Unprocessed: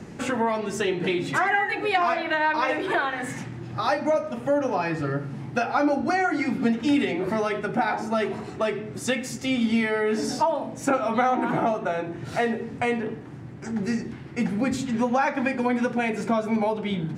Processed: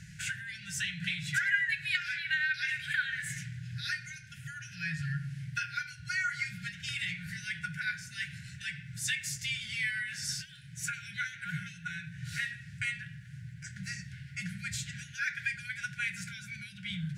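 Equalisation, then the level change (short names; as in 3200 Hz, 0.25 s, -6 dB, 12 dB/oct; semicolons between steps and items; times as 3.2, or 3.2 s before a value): brick-wall FIR band-stop 180–1400 Hz; high shelf 6000 Hz +5.5 dB; -3.5 dB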